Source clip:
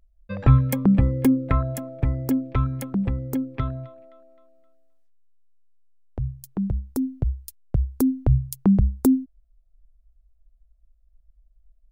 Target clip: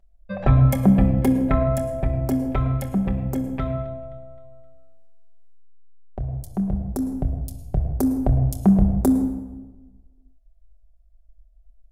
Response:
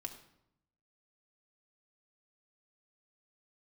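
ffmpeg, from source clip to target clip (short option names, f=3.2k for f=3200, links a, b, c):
-filter_complex "[0:a]equalizer=f=690:w=3.9:g=14[a];[1:a]atrim=start_sample=2205,asetrate=26901,aresample=44100[b];[a][b]afir=irnorm=-1:irlink=0"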